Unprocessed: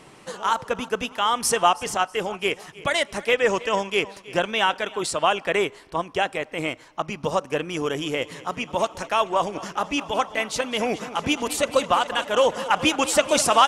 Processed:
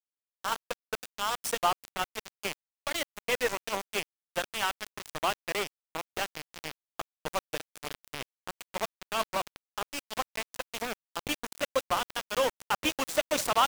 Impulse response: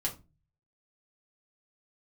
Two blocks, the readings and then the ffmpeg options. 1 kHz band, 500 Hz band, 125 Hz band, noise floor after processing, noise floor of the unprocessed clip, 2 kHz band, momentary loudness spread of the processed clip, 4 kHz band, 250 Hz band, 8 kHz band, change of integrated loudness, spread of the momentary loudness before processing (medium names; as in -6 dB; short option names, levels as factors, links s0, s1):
-9.5 dB, -11.0 dB, -12.0 dB, under -85 dBFS, -48 dBFS, -8.5 dB, 11 LU, -8.0 dB, -12.5 dB, -8.5 dB, -9.5 dB, 8 LU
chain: -af "aeval=exprs='val(0)*gte(abs(val(0)),0.119)':c=same,volume=0.398"